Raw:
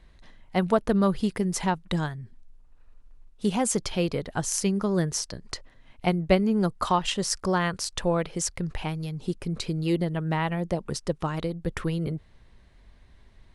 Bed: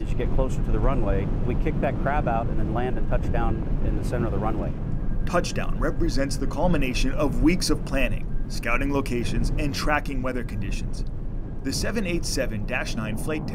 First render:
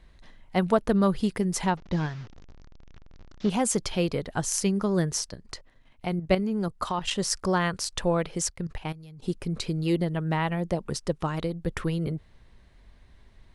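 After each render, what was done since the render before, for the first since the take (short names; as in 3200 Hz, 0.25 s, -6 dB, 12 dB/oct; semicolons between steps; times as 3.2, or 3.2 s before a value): 1.77–3.5 delta modulation 32 kbps, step -41.5 dBFS; 5.29–7.11 level quantiser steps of 9 dB; 8.5–9.24 level quantiser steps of 15 dB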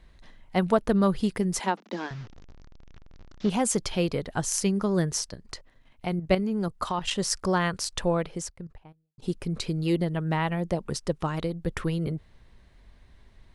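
1.59–2.11 steep high-pass 200 Hz 72 dB/oct; 7.96–9.18 studio fade out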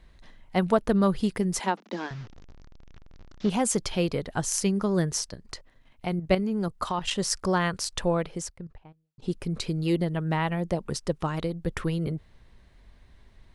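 8.58–9.31 air absorption 61 m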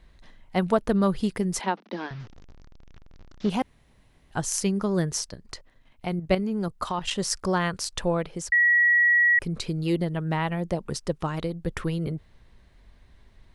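1.61–2.2 polynomial smoothing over 15 samples; 3.62–4.31 room tone; 8.52–9.39 bleep 1920 Hz -16 dBFS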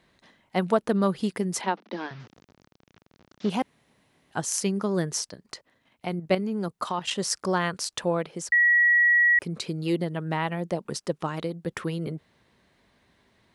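HPF 170 Hz 12 dB/oct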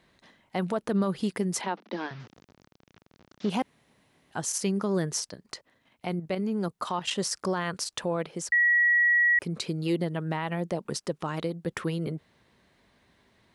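limiter -18.5 dBFS, peak gain reduction 9.5 dB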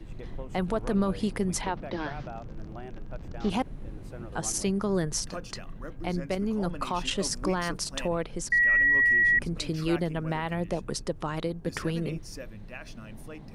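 add bed -15.5 dB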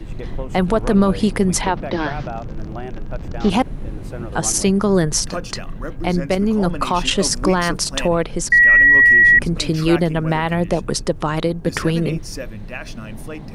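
gain +11.5 dB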